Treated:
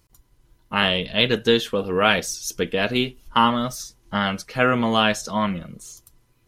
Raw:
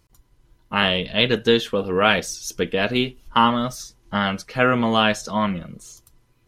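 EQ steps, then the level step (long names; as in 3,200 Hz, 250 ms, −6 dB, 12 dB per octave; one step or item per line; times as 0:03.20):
high-shelf EQ 7,000 Hz +6 dB
−1.0 dB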